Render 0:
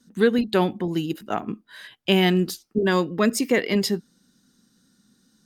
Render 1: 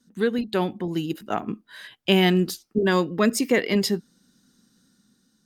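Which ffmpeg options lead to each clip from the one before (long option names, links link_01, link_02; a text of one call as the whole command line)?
ffmpeg -i in.wav -af "dynaudnorm=framelen=370:gausssize=5:maxgain=7dB,volume=-4.5dB" out.wav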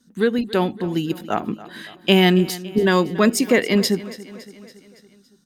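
ffmpeg -i in.wav -af "aecho=1:1:281|562|843|1124|1405:0.126|0.073|0.0424|0.0246|0.0142,volume=4dB" out.wav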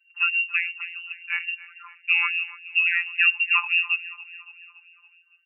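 ffmpeg -i in.wav -af "lowpass=frequency=2600:width_type=q:width=0.5098,lowpass=frequency=2600:width_type=q:width=0.6013,lowpass=frequency=2600:width_type=q:width=0.9,lowpass=frequency=2600:width_type=q:width=2.563,afreqshift=-3000,afftfilt=real='hypot(re,im)*cos(PI*b)':imag='0':win_size=1024:overlap=0.75,afftfilt=real='re*gte(b*sr/1024,730*pow(1600/730,0.5+0.5*sin(2*PI*3.5*pts/sr)))':imag='im*gte(b*sr/1024,730*pow(1600/730,0.5+0.5*sin(2*PI*3.5*pts/sr)))':win_size=1024:overlap=0.75,volume=-1.5dB" out.wav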